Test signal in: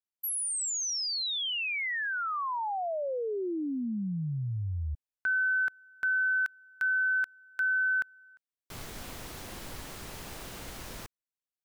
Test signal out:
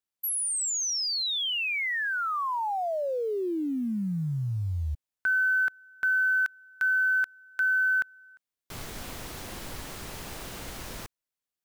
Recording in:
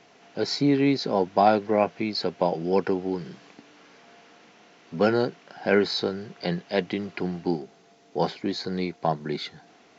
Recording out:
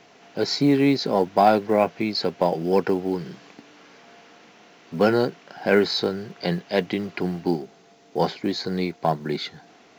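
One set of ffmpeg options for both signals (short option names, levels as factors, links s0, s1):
-filter_complex "[0:a]asplit=2[s0][s1];[s1]acontrast=82,volume=0.75[s2];[s0][s2]amix=inputs=2:normalize=0,acrusher=bits=9:mode=log:mix=0:aa=0.000001,volume=0.531"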